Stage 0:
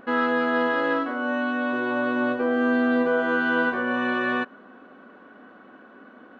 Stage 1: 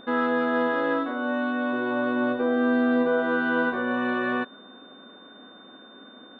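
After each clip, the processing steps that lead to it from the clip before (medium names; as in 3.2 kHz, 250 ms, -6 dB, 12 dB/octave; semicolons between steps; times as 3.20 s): treble shelf 2.3 kHz -9.5 dB; whistle 3.6 kHz -50 dBFS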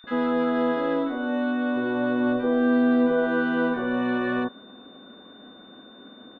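bass shelf 140 Hz +10.5 dB; bands offset in time highs, lows 40 ms, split 1.4 kHz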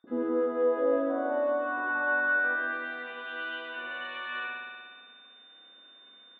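band-pass sweep 330 Hz -> 2.8 kHz, 0.08–3.21 s; spring tank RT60 1.7 s, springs 58 ms, chirp 50 ms, DRR -3 dB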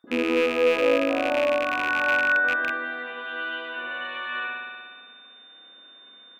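rattle on loud lows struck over -48 dBFS, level -21 dBFS; trim +5 dB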